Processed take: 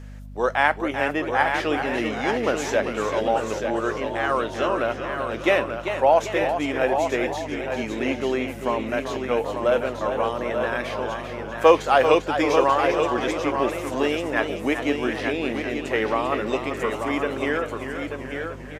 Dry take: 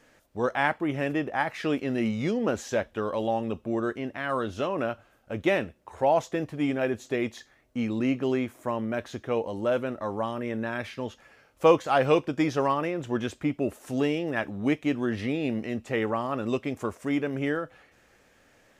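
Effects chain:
high-pass filter 400 Hz 12 dB per octave
mains hum 50 Hz, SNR 14 dB
single-tap delay 887 ms −6.5 dB
feedback echo with a swinging delay time 392 ms, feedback 55%, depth 105 cents, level −8.5 dB
level +6 dB

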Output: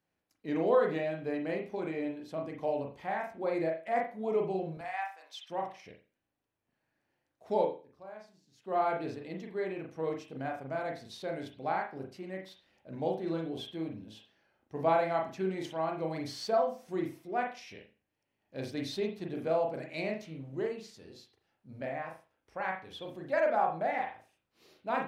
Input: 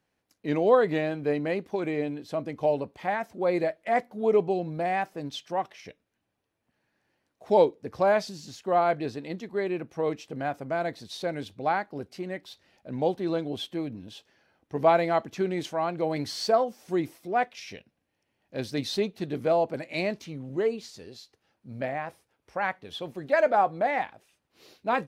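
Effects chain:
0:04.77–0:05.50: high-pass filter 800 Hz 24 dB per octave
0:07.51–0:08.77: duck −19 dB, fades 0.25 s
convolution reverb, pre-delay 37 ms, DRR 1 dB
level −8.5 dB

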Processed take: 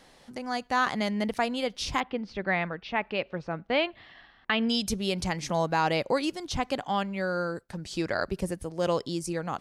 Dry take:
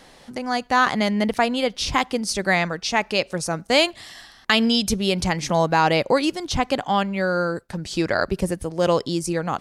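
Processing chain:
0:02.00–0:04.69: low-pass filter 3,100 Hz 24 dB per octave
level −7.5 dB

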